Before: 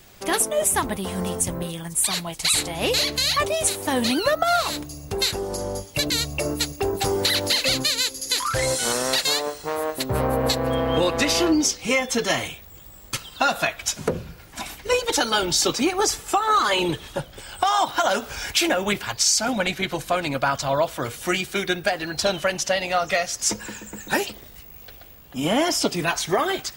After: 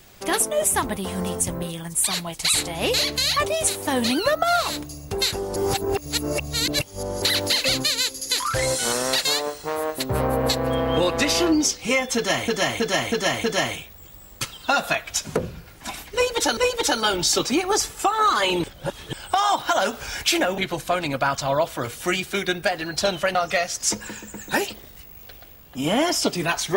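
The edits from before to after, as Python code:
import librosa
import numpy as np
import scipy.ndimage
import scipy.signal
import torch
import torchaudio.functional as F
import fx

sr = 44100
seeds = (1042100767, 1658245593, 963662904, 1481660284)

y = fx.edit(x, sr, fx.reverse_span(start_s=5.56, length_s=1.66),
    fx.repeat(start_s=12.16, length_s=0.32, count=5),
    fx.repeat(start_s=14.86, length_s=0.43, count=2),
    fx.reverse_span(start_s=16.93, length_s=0.49),
    fx.cut(start_s=18.87, length_s=0.92),
    fx.cut(start_s=22.56, length_s=0.38), tone=tone)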